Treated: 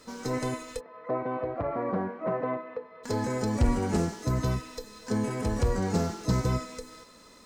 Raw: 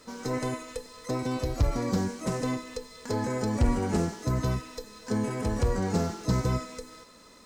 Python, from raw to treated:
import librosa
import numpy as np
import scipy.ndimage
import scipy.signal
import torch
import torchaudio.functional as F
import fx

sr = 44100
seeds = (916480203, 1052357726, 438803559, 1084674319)

y = fx.cabinet(x, sr, low_hz=200.0, low_slope=12, high_hz=2000.0, hz=(250.0, 650.0, 1100.0), db=(-5, 9, 4), at=(0.79, 3.03), fade=0.02)